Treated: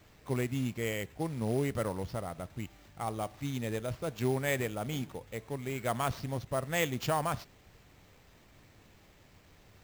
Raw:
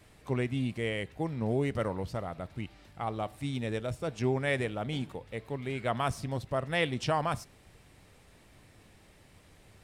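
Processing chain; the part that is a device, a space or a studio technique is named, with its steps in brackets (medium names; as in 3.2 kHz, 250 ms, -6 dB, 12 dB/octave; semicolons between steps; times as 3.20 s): early companding sampler (sample-rate reducer 9.9 kHz, jitter 0%; companded quantiser 6-bit); trim -1.5 dB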